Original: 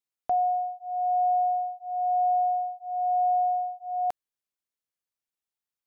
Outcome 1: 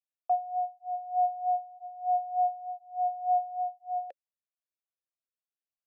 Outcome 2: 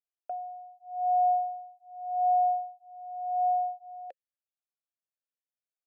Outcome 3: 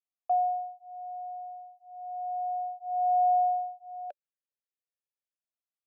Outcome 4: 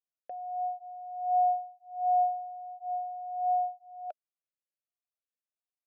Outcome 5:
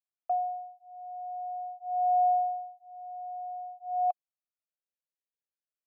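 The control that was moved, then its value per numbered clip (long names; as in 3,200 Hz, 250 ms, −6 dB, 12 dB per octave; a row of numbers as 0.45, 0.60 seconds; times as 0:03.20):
formant filter swept between two vowels, speed: 3.3, 0.84, 0.32, 1.4, 0.48 Hertz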